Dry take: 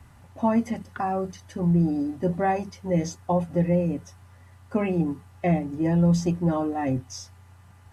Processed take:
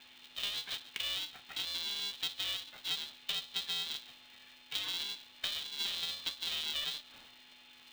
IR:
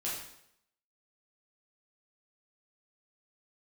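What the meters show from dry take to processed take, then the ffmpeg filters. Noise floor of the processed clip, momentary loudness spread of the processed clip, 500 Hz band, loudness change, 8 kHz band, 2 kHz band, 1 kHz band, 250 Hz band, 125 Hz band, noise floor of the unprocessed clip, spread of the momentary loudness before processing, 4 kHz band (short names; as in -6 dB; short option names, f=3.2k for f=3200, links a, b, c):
-59 dBFS, 19 LU, -31.0 dB, -11.0 dB, n/a, -3.5 dB, -23.0 dB, -38.0 dB, -39.0 dB, -52 dBFS, 9 LU, +15.5 dB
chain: -filter_complex "[0:a]lowshelf=f=320:t=q:w=1.5:g=-13,acrossover=split=370[a][b];[b]acompressor=threshold=-31dB:ratio=6[c];[a][c]amix=inputs=2:normalize=0,lowpass=f=3.4k:t=q:w=0.5098,lowpass=f=3.4k:t=q:w=0.6013,lowpass=f=3.4k:t=q:w=0.9,lowpass=f=3.4k:t=q:w=2.563,afreqshift=-4000,acompressor=threshold=-38dB:ratio=3,asplit=2[d][e];[1:a]atrim=start_sample=2205[f];[e][f]afir=irnorm=-1:irlink=0,volume=-15.5dB[g];[d][g]amix=inputs=2:normalize=0,aeval=exprs='val(0)+0.000398*sin(2*PI*550*n/s)':c=same,aeval=exprs='val(0)*sgn(sin(2*PI*300*n/s))':c=same"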